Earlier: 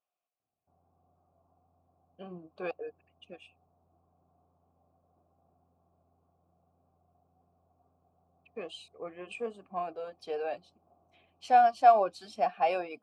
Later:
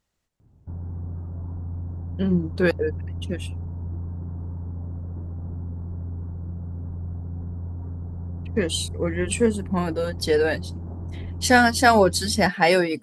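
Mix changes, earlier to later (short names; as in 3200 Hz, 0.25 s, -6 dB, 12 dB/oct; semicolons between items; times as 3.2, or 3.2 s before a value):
background +11.0 dB; master: remove vowel filter a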